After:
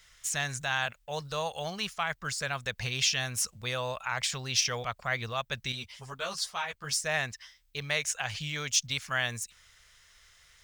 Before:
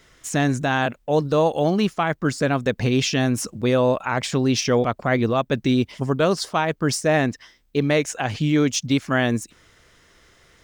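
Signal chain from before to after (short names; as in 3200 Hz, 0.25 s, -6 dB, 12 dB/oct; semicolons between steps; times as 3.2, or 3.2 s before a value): passive tone stack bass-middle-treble 10-0-10; 5.72–7.04 ensemble effect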